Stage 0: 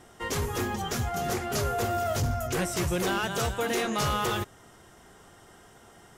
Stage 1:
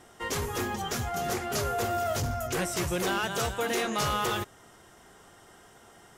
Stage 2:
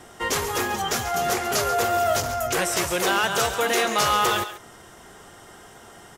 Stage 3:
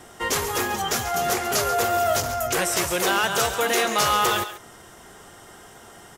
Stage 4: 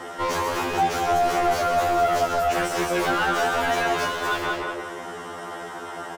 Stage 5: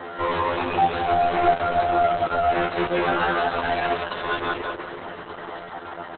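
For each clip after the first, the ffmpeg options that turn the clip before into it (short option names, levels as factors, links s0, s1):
-af "lowshelf=f=250:g=-4.5"
-filter_complex "[0:a]acrossover=split=390[s0][s1];[s0]acompressor=threshold=0.00708:ratio=5[s2];[s1]aecho=1:1:137:0.251[s3];[s2][s3]amix=inputs=2:normalize=0,volume=2.51"
-af "highshelf=f=9200:g=4"
-filter_complex "[0:a]asplit=2[s0][s1];[s1]adelay=181,lowpass=f=1900:p=1,volume=0.596,asplit=2[s2][s3];[s3]adelay=181,lowpass=f=1900:p=1,volume=0.41,asplit=2[s4][s5];[s5]adelay=181,lowpass=f=1900:p=1,volume=0.41,asplit=2[s6][s7];[s7]adelay=181,lowpass=f=1900:p=1,volume=0.41,asplit=2[s8][s9];[s9]adelay=181,lowpass=f=1900:p=1,volume=0.41[s10];[s0][s2][s4][s6][s8][s10]amix=inputs=6:normalize=0,asplit=2[s11][s12];[s12]highpass=f=720:p=1,volume=28.2,asoftclip=type=tanh:threshold=0.473[s13];[s11][s13]amix=inputs=2:normalize=0,lowpass=f=1100:p=1,volume=0.501,afftfilt=real='re*2*eq(mod(b,4),0)':imag='im*2*eq(mod(b,4),0)':win_size=2048:overlap=0.75,volume=0.668"
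-af "volume=1.33" -ar 48000 -c:a libopus -b:a 8k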